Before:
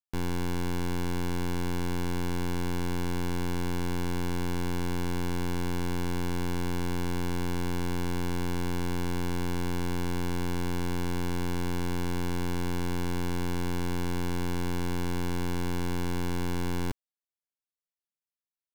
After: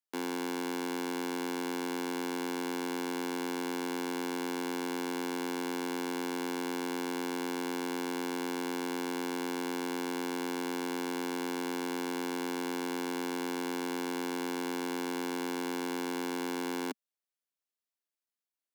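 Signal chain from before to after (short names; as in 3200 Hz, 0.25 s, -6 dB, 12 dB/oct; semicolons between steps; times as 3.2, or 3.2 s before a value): steep high-pass 220 Hz 48 dB/oct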